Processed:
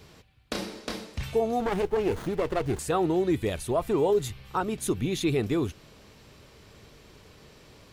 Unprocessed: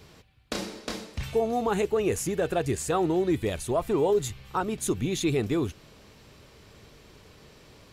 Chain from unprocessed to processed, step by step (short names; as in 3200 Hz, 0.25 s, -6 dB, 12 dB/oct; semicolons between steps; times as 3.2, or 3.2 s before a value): dynamic EQ 7000 Hz, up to -6 dB, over -53 dBFS, Q 3.2; 1.6–2.79 running maximum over 17 samples